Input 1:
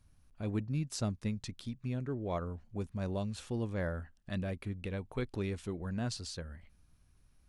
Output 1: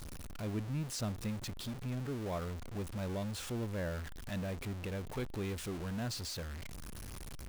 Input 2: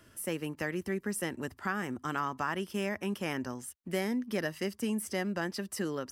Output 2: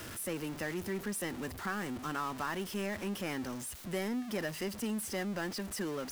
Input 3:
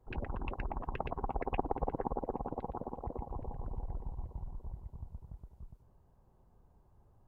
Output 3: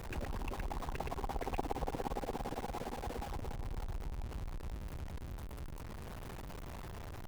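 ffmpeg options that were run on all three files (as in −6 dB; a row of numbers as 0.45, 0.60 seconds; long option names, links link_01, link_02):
-af "aeval=exprs='val(0)+0.5*0.02*sgn(val(0))':channel_layout=same,volume=-5.5dB"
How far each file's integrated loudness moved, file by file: −2.0, −2.5, −2.0 LU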